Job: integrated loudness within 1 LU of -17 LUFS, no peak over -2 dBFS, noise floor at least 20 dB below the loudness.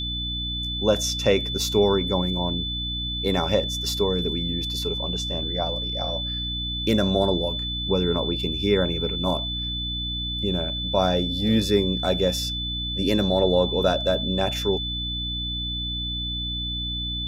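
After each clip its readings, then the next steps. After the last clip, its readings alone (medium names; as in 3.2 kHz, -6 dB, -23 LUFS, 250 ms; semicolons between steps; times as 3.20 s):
hum 60 Hz; highest harmonic 300 Hz; hum level -30 dBFS; steady tone 3.5 kHz; tone level -28 dBFS; loudness -24.0 LUFS; peak level -6.5 dBFS; loudness target -17.0 LUFS
-> de-hum 60 Hz, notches 5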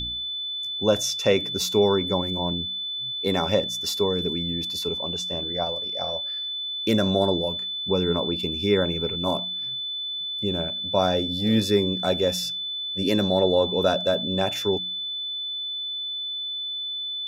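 hum not found; steady tone 3.5 kHz; tone level -28 dBFS
-> band-stop 3.5 kHz, Q 30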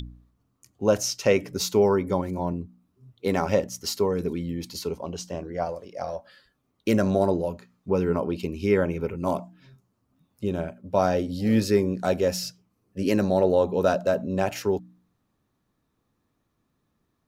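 steady tone not found; loudness -25.5 LUFS; peak level -6.5 dBFS; loudness target -17.0 LUFS
-> trim +8.5 dB; peak limiter -2 dBFS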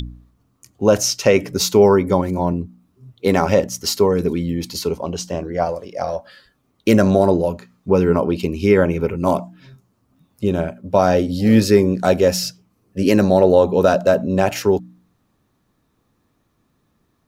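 loudness -17.5 LUFS; peak level -2.0 dBFS; noise floor -66 dBFS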